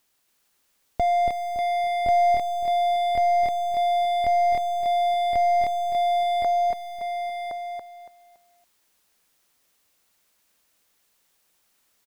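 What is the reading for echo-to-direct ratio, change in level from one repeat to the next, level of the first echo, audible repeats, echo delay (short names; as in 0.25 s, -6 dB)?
-1.0 dB, no steady repeat, -4.0 dB, 7, 0.282 s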